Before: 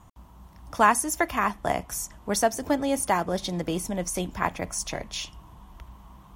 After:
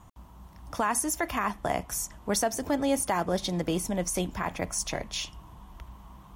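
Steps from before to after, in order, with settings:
brickwall limiter −16.5 dBFS, peak gain reduction 10.5 dB

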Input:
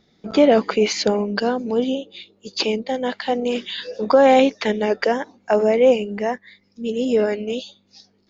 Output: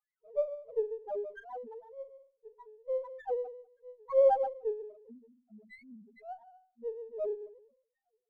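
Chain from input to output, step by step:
adaptive Wiener filter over 15 samples
LFO wah 2.3 Hz 460–2,100 Hz, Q 4.8
parametric band 5,600 Hz −14.5 dB 1.1 octaves
flutter between parallel walls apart 6.9 metres, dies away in 0.22 s
gain on a spectral selection 0:04.99–0:06.08, 260–2,000 Hz −26 dB
convolution reverb RT60 0.50 s, pre-delay 109 ms, DRR 10 dB
spectral peaks only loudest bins 1
windowed peak hold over 3 samples

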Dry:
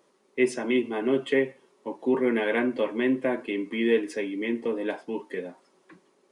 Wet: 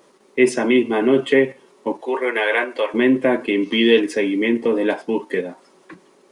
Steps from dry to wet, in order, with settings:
0:02.01–0:02.94: Bessel high-pass filter 650 Hz, order 4
0:03.63–0:04.00: gain on a spectral selection 2,600–6,500 Hz +9 dB
in parallel at +0.5 dB: output level in coarse steps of 17 dB
on the sum: level +6.5 dB

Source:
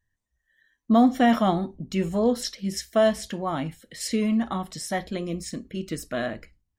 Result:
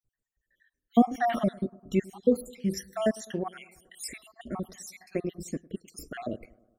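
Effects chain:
time-frequency cells dropped at random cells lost 62%
graphic EQ with 15 bands 400 Hz +6 dB, 1,000 Hz −10 dB, 4,000 Hz −10 dB
bucket-brigade delay 103 ms, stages 1,024, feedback 59%, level −22.5 dB

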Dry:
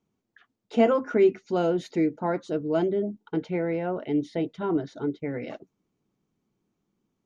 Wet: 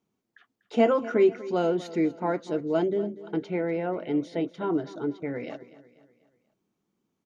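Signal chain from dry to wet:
low-shelf EQ 92 Hz −11.5 dB
repeating echo 244 ms, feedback 46%, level −17 dB

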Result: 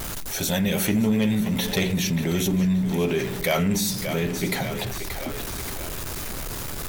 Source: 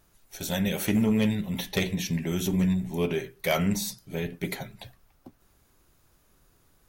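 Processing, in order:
converter with a step at zero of −38.5 dBFS
echo with a time of its own for lows and highs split 360 Hz, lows 134 ms, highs 579 ms, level −13 dB
envelope flattener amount 50%

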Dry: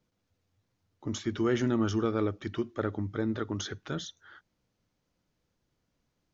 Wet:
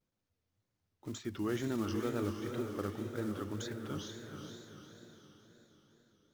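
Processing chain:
one scale factor per block 5 bits
feedback delay with all-pass diffusion 474 ms, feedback 48%, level −5 dB
tape wow and flutter 120 cents
level −8 dB

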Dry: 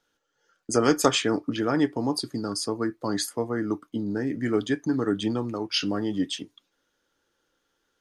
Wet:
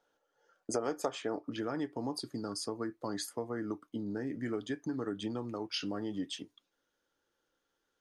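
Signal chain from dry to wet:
parametric band 670 Hz +14 dB 1.7 octaves, from 0:01.48 +3 dB
downward compressor 4 to 1, threshold −24 dBFS, peak gain reduction 16.5 dB
level −8.5 dB

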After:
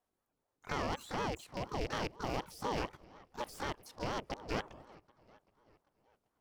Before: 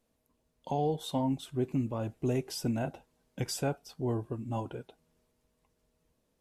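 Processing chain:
loose part that buzzes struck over −35 dBFS, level −27 dBFS
output level in coarse steps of 17 dB
on a send: delay with a low-pass on its return 388 ms, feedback 55%, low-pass 2,300 Hz, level −21.5 dB
on the sum: pitch-shifted copies added +12 semitones −4 dB
ring modulator whose carrier an LFO sweeps 460 Hz, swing 60%, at 4.1 Hz

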